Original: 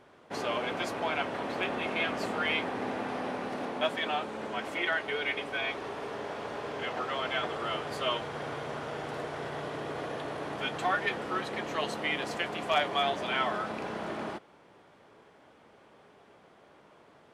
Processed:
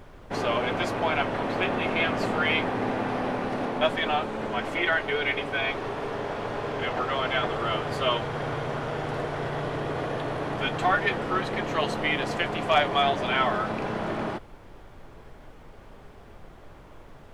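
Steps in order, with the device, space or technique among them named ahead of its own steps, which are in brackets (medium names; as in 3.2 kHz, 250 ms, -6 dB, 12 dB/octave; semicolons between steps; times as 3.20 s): car interior (peaking EQ 110 Hz +8 dB 0.96 oct; treble shelf 4.5 kHz -6 dB; brown noise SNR 19 dB); trim +6 dB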